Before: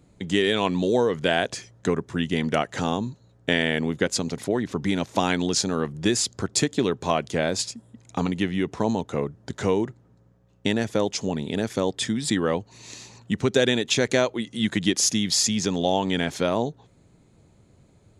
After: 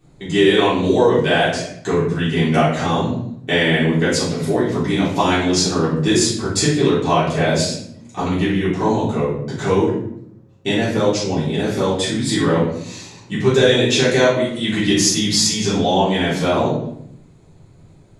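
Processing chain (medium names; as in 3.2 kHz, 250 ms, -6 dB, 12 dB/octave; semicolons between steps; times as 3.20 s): simulated room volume 150 m³, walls mixed, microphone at 3.5 m; trim -5 dB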